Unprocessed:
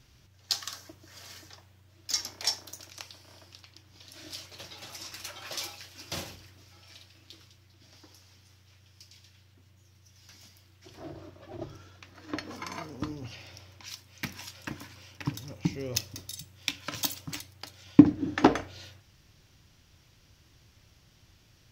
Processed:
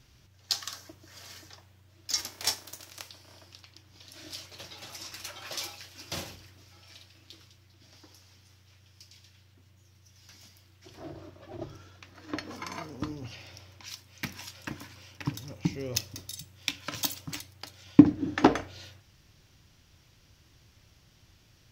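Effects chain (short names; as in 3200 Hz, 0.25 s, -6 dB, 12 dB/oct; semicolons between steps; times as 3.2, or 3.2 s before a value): 2.17–3.08 spectral whitening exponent 0.6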